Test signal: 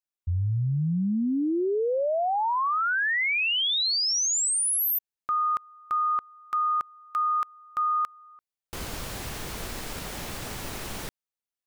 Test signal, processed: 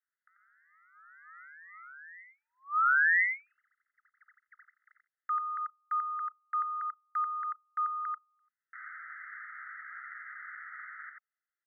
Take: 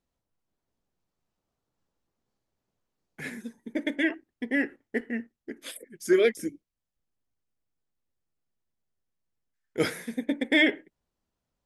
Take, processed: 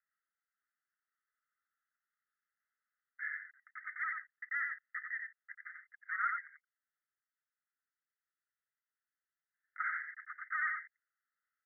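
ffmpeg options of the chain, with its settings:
ffmpeg -i in.wav -af "agate=range=-58dB:threshold=-45dB:ratio=16:release=28:detection=rms,acompressor=mode=upward:threshold=-33dB:ratio=2.5:attack=1.1:release=38:knee=2.83:detection=peak,aeval=exprs='0.0708*(abs(mod(val(0)/0.0708+3,4)-2)-1)':channel_layout=same,asuperpass=centerf=1600:order=20:qfactor=1.9,aecho=1:1:89:0.596" out.wav

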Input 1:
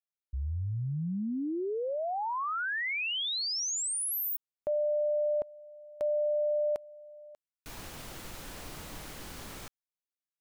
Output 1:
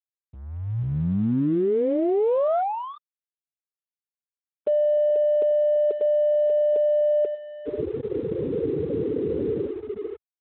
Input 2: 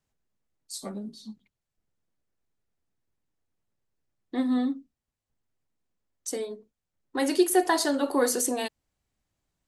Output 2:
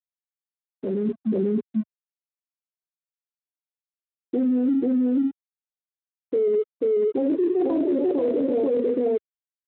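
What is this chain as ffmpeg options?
ffmpeg -i in.wav -af "lowpass=frequency=430:width_type=q:width=4.9,aecho=1:1:488:0.708,afftfilt=real='re*gte(hypot(re,im),0.0316)':imag='im*gte(hypot(re,im),0.0316)':win_size=1024:overlap=0.75,areverse,acompressor=threshold=-32dB:ratio=5:attack=0.17:release=71:knee=6:detection=peak,areverse,alimiter=level_in=12dB:limit=-24dB:level=0:latency=1:release=18,volume=-12dB,dynaudnorm=framelen=350:gausssize=5:maxgain=10dB,highpass=41,aeval=exprs='sgn(val(0))*max(abs(val(0))-0.0015,0)':channel_layout=same,volume=9dB" -ar 8000 -c:a libspeex -b:a 24k out.spx

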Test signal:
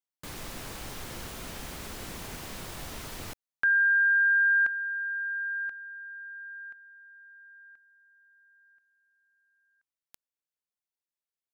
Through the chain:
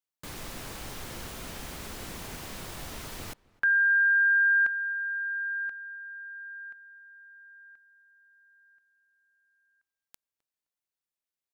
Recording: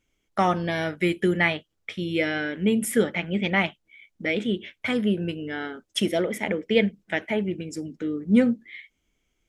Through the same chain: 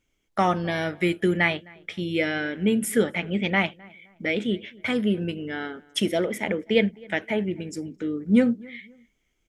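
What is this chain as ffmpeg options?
ffmpeg -i in.wav -filter_complex "[0:a]asplit=2[link_01][link_02];[link_02]adelay=260,lowpass=frequency=2200:poles=1,volume=-24dB,asplit=2[link_03][link_04];[link_04]adelay=260,lowpass=frequency=2200:poles=1,volume=0.33[link_05];[link_01][link_03][link_05]amix=inputs=3:normalize=0" out.wav

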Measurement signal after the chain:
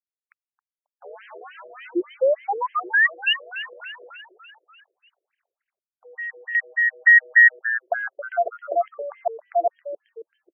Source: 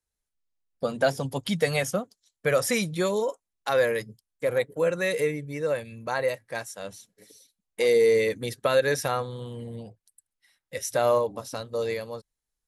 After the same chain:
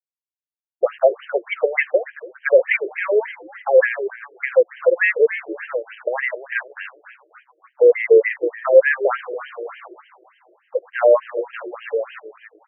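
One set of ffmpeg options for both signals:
ffmpeg -i in.wav -filter_complex "[0:a]equalizer=frequency=500:width_type=o:width=1:gain=7,equalizer=frequency=1000:width_type=o:width=1:gain=-4,equalizer=frequency=2000:width_type=o:width=1:gain=9,asplit=2[link_01][link_02];[link_02]acompressor=threshold=-28dB:ratio=6,volume=-2dB[link_03];[link_01][link_03]amix=inputs=2:normalize=0,aeval=exprs='val(0)+0.00398*sin(2*PI*490*n/s)':channel_layout=same,aeval=exprs='val(0)*gte(abs(val(0)),0.0299)':channel_layout=same,asplit=2[link_04][link_05];[link_05]asplit=6[link_06][link_07][link_08][link_09][link_10][link_11];[link_06]adelay=270,afreqshift=-120,volume=-13.5dB[link_12];[link_07]adelay=540,afreqshift=-240,volume=-18.2dB[link_13];[link_08]adelay=810,afreqshift=-360,volume=-23dB[link_14];[link_09]adelay=1080,afreqshift=-480,volume=-27.7dB[link_15];[link_10]adelay=1350,afreqshift=-600,volume=-32.4dB[link_16];[link_11]adelay=1620,afreqshift=-720,volume=-37.2dB[link_17];[link_12][link_13][link_14][link_15][link_16][link_17]amix=inputs=6:normalize=0[link_18];[link_04][link_18]amix=inputs=2:normalize=0,afftfilt=real='re*between(b*sr/1024,450*pow(2300/450,0.5+0.5*sin(2*PI*3.4*pts/sr))/1.41,450*pow(2300/450,0.5+0.5*sin(2*PI*3.4*pts/sr))*1.41)':imag='im*between(b*sr/1024,450*pow(2300/450,0.5+0.5*sin(2*PI*3.4*pts/sr))/1.41,450*pow(2300/450,0.5+0.5*sin(2*PI*3.4*pts/sr))*1.41)':win_size=1024:overlap=0.75,volume=4.5dB" out.wav

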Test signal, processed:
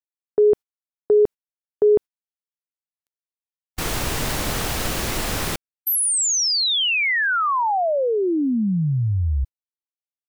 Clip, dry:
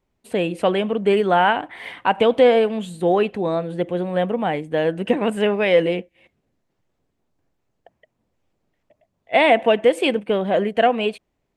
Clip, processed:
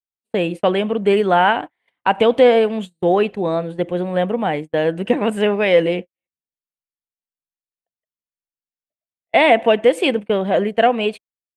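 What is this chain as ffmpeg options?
ffmpeg -i in.wav -af "agate=range=-40dB:threshold=-28dB:ratio=16:detection=peak,volume=2dB" out.wav

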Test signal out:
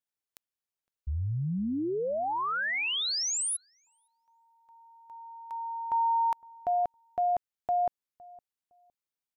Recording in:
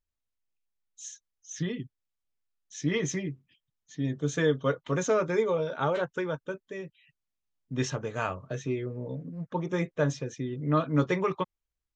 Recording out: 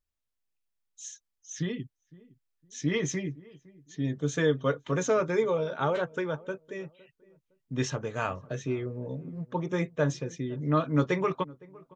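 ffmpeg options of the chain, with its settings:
ffmpeg -i in.wav -filter_complex "[0:a]asplit=2[link_01][link_02];[link_02]adelay=511,lowpass=frequency=920:poles=1,volume=-21.5dB,asplit=2[link_03][link_04];[link_04]adelay=511,lowpass=frequency=920:poles=1,volume=0.27[link_05];[link_01][link_03][link_05]amix=inputs=3:normalize=0" out.wav

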